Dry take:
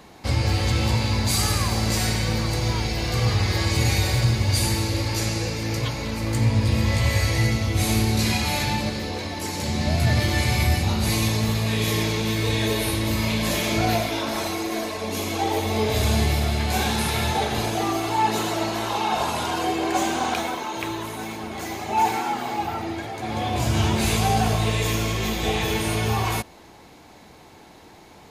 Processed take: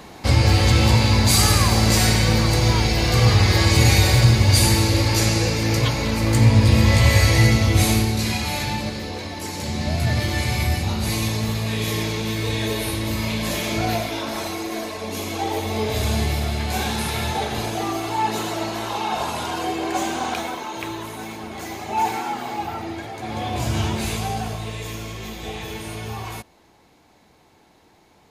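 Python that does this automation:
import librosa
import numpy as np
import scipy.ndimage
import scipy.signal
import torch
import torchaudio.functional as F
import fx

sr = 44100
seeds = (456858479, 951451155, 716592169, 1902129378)

y = fx.gain(x, sr, db=fx.line((7.76, 6.0), (8.16, -1.0), (23.74, -1.0), (24.63, -8.0)))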